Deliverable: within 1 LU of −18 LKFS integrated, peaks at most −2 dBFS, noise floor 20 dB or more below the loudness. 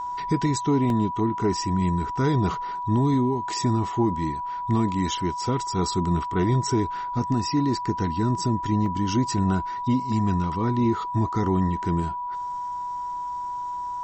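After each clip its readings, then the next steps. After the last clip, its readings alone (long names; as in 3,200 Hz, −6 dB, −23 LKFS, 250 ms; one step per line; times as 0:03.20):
number of dropouts 3; longest dropout 1.4 ms; interfering tone 980 Hz; level of the tone −28 dBFS; integrated loudness −25.0 LKFS; sample peak −12.0 dBFS; target loudness −18.0 LKFS
→ repair the gap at 0:00.90/0:02.54/0:08.86, 1.4 ms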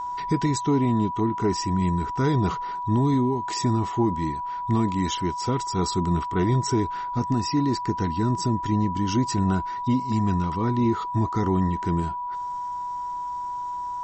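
number of dropouts 0; interfering tone 980 Hz; level of the tone −28 dBFS
→ notch filter 980 Hz, Q 30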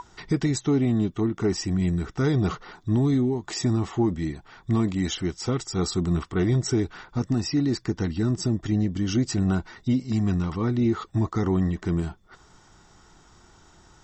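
interfering tone none found; integrated loudness −25.5 LKFS; sample peak −13.5 dBFS; target loudness −18.0 LKFS
→ level +7.5 dB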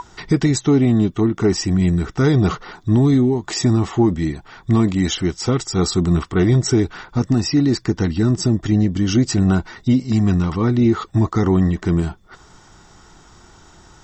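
integrated loudness −18.0 LKFS; sample peak −6.0 dBFS; background noise floor −48 dBFS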